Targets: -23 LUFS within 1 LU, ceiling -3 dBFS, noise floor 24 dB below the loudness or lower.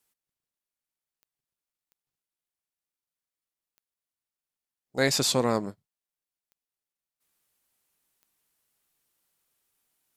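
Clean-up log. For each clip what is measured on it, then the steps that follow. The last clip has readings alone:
clicks 5; loudness -25.5 LUFS; peak -8.5 dBFS; loudness target -23.0 LUFS
-> de-click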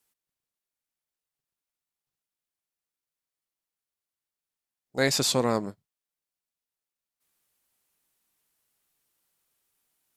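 clicks 0; loudness -25.5 LUFS; peak -8.5 dBFS; loudness target -23.0 LUFS
-> gain +2.5 dB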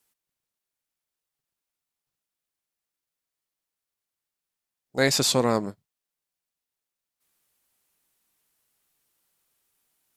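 loudness -23.0 LUFS; peak -6.0 dBFS; noise floor -88 dBFS

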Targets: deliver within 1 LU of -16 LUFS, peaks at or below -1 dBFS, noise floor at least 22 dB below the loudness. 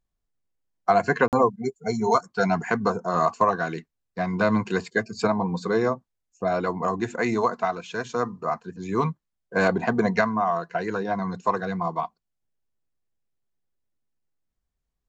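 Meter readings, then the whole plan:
dropouts 1; longest dropout 48 ms; loudness -25.0 LUFS; peak -7.0 dBFS; loudness target -16.0 LUFS
-> interpolate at 1.28, 48 ms; gain +9 dB; limiter -1 dBFS

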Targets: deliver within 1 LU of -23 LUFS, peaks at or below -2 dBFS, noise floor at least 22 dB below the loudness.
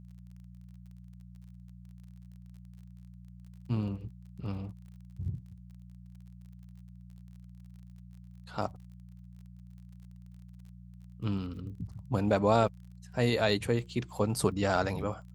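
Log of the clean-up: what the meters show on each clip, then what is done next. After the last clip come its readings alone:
ticks 36/s; hum 60 Hz; harmonics up to 180 Hz; hum level -47 dBFS; loudness -32.0 LUFS; peak -11.0 dBFS; loudness target -23.0 LUFS
-> de-click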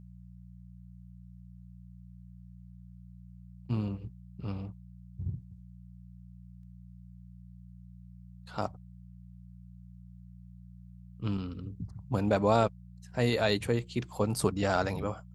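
ticks 0.065/s; hum 60 Hz; harmonics up to 180 Hz; hum level -47 dBFS
-> de-hum 60 Hz, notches 3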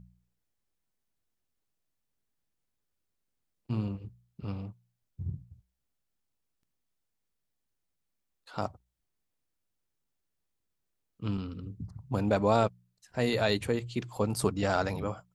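hum none; loudness -32.0 LUFS; peak -11.5 dBFS; loudness target -23.0 LUFS
-> gain +9 dB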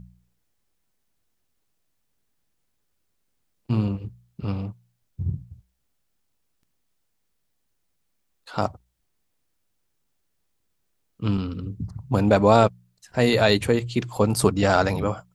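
loudness -23.0 LUFS; peak -2.5 dBFS; noise floor -73 dBFS

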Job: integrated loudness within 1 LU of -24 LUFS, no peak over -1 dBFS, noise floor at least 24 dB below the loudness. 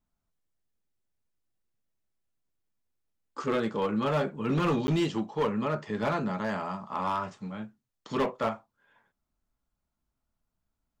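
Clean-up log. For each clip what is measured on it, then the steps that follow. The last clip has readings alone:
clipped 1.0%; flat tops at -21.5 dBFS; dropouts 1; longest dropout 10 ms; loudness -30.5 LUFS; peak -21.5 dBFS; loudness target -24.0 LUFS
-> clip repair -21.5 dBFS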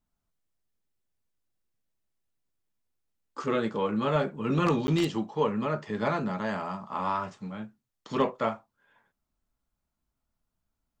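clipped 0.0%; dropouts 1; longest dropout 10 ms
-> interpolate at 4.87, 10 ms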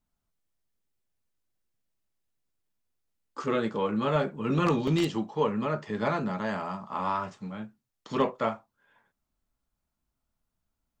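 dropouts 0; loudness -29.5 LUFS; peak -12.5 dBFS; loudness target -24.0 LUFS
-> gain +5.5 dB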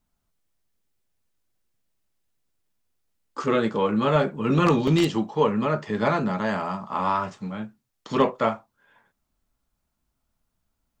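loudness -24.0 LUFS; peak -7.0 dBFS; noise floor -78 dBFS

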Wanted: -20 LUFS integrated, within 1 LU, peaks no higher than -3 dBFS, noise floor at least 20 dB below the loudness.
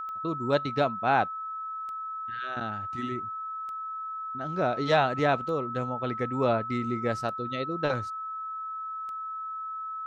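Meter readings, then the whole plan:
clicks 6; steady tone 1300 Hz; tone level -33 dBFS; loudness -30.0 LUFS; peak -10.5 dBFS; loudness target -20.0 LUFS
-> de-click; notch 1300 Hz, Q 30; gain +10 dB; limiter -3 dBFS

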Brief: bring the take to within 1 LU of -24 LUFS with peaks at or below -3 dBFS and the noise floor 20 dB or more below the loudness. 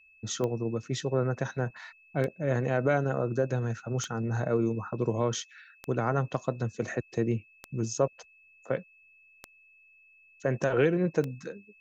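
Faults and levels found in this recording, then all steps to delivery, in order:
clicks 7; steady tone 2600 Hz; tone level -57 dBFS; loudness -30.5 LUFS; peak -12.0 dBFS; loudness target -24.0 LUFS
-> de-click; notch 2600 Hz, Q 30; gain +6.5 dB

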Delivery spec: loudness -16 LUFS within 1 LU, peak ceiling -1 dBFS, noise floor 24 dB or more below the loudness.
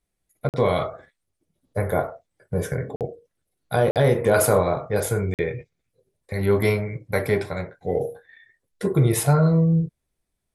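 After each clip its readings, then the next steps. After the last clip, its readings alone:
dropouts 4; longest dropout 48 ms; loudness -23.0 LUFS; peak -6.5 dBFS; loudness target -16.0 LUFS
-> interpolate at 0.49/2.96/3.91/5.34, 48 ms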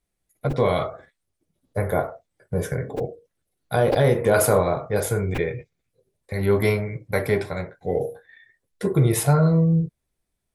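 dropouts 0; loudness -23.0 LUFS; peak -6.5 dBFS; loudness target -16.0 LUFS
-> gain +7 dB; limiter -1 dBFS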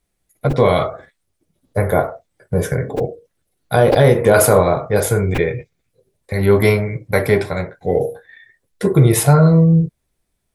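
loudness -16.0 LUFS; peak -1.0 dBFS; noise floor -72 dBFS

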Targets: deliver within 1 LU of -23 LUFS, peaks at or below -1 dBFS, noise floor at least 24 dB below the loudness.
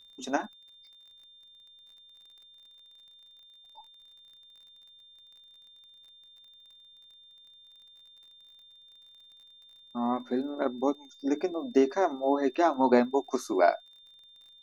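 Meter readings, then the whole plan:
ticks 33/s; steady tone 3600 Hz; tone level -53 dBFS; loudness -28.0 LUFS; peak -9.0 dBFS; loudness target -23.0 LUFS
-> de-click; notch 3600 Hz, Q 30; gain +5 dB

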